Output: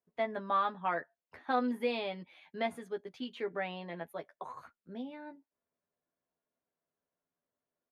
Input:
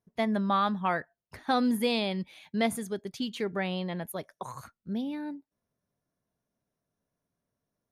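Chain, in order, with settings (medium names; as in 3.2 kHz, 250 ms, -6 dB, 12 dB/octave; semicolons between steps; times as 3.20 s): three-band isolator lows -14 dB, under 280 Hz, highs -18 dB, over 3.3 kHz; doubling 12 ms -4.5 dB; trim -5 dB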